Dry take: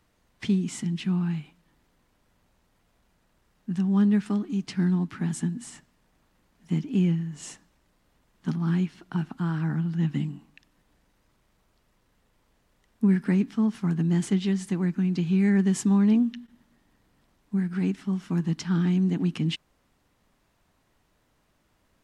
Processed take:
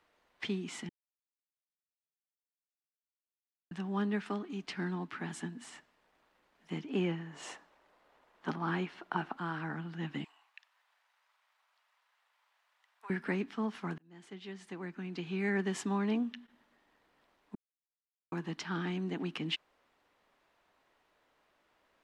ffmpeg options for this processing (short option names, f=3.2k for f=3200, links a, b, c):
-filter_complex "[0:a]asettb=1/sr,asplit=3[a][b][c];[a]atrim=end=6.894[d];[b]atrim=start=6.89:end=9.4,asetpts=PTS-STARTPTS,afade=t=in:d=0.004:c=qsin,afade=t=out:st=2.506:d=0.004:c=qsin,equalizer=f=750:w=0.49:g=7[e];[c]atrim=start=9.396[f];[d][e]acrossfade=d=0.004:c1=hsin:c2=qsin[g];[g][f]acrossfade=d=0.004:c1=qsin:c2=hsin,asettb=1/sr,asplit=3[h][i][j];[h]atrim=end=10.244[k];[i]atrim=start=10.24:end=13.1,asetpts=PTS-STARTPTS,afade=t=in:d=0.004:c=qsin,afade=t=out:st=2.856:d=0.004:c=qsin,highpass=f=820:w=0.5412,highpass=f=820:w=1.3066[l];[j]atrim=start=13.096[m];[k][l]acrossfade=d=0.004:c1=hsin:c2=qsin[n];[n][m]acrossfade=d=0.004:c1=qsin:c2=hsin,asplit=6[o][p][q][r][s][t];[o]atrim=end=0.89,asetpts=PTS-STARTPTS,afade=t=out:st=0.886:d=0.004:c=hsin[u];[p]atrim=start=0.89:end=3.71,asetpts=PTS-STARTPTS,volume=0[v];[q]atrim=start=3.71:end=13.98,asetpts=PTS-STARTPTS,afade=t=in:d=0.004:c=hsin,afade=t=out:st=10.266:d=0.004:c=hsin[w];[r]atrim=start=13.98:end=17.55,asetpts=PTS-STARTPTS,afade=t=in:d=1.56,afade=t=out:st=3.566:d=0.004:c=hsin[x];[s]atrim=start=17.55:end=18.32,asetpts=PTS-STARTPTS,volume=0[y];[t]atrim=start=18.32,asetpts=PTS-STARTPTS,afade=t=in:d=0.004:c=hsin[z];[u][v][w][x][y][z]concat=n=6:v=0:a=1,acrossover=split=350 4200:gain=0.126 1 0.251[aa][ab][ac];[aa][ab][ac]amix=inputs=3:normalize=0"